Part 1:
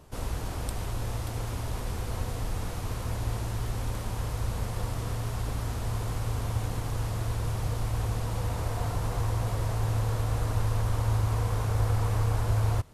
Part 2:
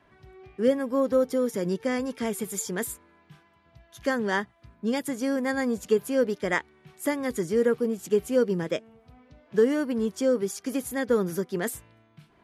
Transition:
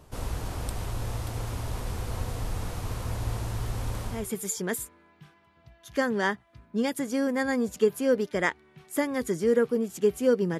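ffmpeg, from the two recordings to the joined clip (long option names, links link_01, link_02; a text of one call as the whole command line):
ffmpeg -i cue0.wav -i cue1.wav -filter_complex "[0:a]apad=whole_dur=10.59,atrim=end=10.59,atrim=end=4.31,asetpts=PTS-STARTPTS[link_01];[1:a]atrim=start=2.14:end=8.68,asetpts=PTS-STARTPTS[link_02];[link_01][link_02]acrossfade=duration=0.26:curve1=tri:curve2=tri" out.wav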